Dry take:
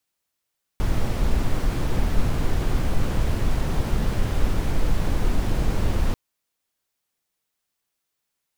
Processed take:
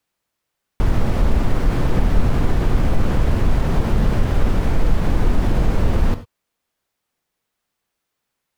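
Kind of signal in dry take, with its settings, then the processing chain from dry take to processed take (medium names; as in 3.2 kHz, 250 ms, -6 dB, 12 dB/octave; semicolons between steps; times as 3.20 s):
noise brown, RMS -19.5 dBFS 5.34 s
treble shelf 3.2 kHz -9 dB; in parallel at +2 dB: peak limiter -17 dBFS; on the sum: gated-style reverb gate 120 ms flat, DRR 10.5 dB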